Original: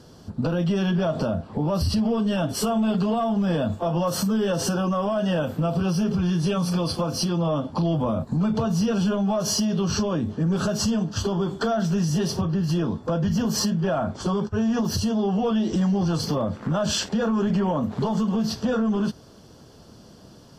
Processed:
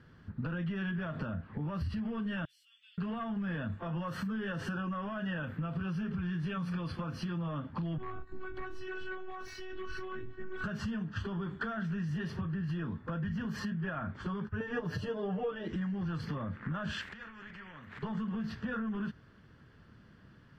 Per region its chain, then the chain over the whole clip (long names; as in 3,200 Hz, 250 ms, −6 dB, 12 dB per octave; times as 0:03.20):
0:02.45–0:02.98: inverse Chebyshev high-pass filter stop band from 730 Hz, stop band 70 dB + downward compressor 5 to 1, threshold −44 dBFS
0:07.98–0:10.64: phases set to zero 373 Hz + hard clipping −20 dBFS + double-tracking delay 18 ms −11.5 dB
0:14.60–0:15.68: parametric band 530 Hz +13 dB 0.95 octaves + comb filter 6.7 ms, depth 93%
0:17.01–0:18.03: downward compressor, threshold −32 dBFS + every bin compressed towards the loudest bin 2 to 1
whole clip: drawn EQ curve 130 Hz 0 dB, 720 Hz −12 dB, 1,800 Hz +9 dB, 5,700 Hz −20 dB; downward compressor, threshold −25 dBFS; level −7 dB